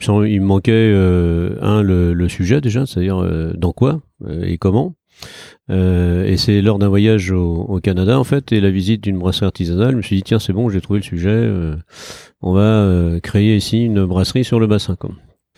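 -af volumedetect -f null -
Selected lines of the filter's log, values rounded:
mean_volume: -14.9 dB
max_volume: -1.5 dB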